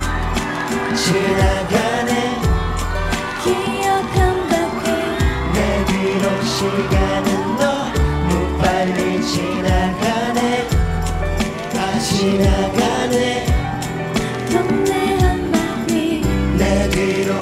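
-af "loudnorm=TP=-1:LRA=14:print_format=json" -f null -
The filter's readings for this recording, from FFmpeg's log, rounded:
"input_i" : "-17.9",
"input_tp" : "-3.1",
"input_lra" : "1.0",
"input_thresh" : "-27.9",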